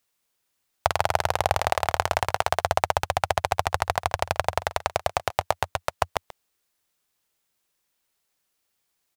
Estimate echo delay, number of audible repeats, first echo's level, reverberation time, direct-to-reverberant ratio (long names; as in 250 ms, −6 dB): 135 ms, 1, −17.5 dB, no reverb audible, no reverb audible